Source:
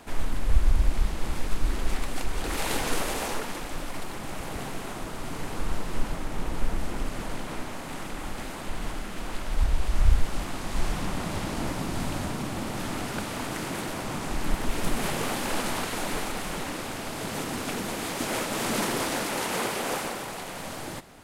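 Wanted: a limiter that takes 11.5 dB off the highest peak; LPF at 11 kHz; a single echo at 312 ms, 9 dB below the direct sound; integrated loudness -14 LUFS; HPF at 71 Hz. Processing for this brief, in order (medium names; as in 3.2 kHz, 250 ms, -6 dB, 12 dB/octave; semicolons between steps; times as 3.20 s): high-pass 71 Hz; low-pass 11 kHz; peak limiter -26.5 dBFS; delay 312 ms -9 dB; trim +21.5 dB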